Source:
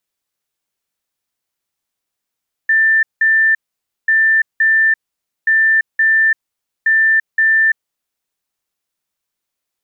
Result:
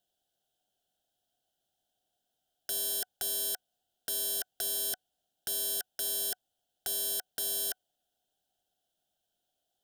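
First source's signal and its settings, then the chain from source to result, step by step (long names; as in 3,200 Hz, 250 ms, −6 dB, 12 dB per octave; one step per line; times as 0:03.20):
beeps in groups sine 1,780 Hz, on 0.34 s, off 0.18 s, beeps 2, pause 0.53 s, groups 4, −9 dBFS
brickwall limiter −14.5 dBFS
wrap-around overflow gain 21.5 dB
drawn EQ curve 520 Hz 0 dB, 740 Hz +12 dB, 1,100 Hz −25 dB, 1,500 Hz −1 dB, 2,200 Hz −24 dB, 3,100 Hz +5 dB, 4,400 Hz −5 dB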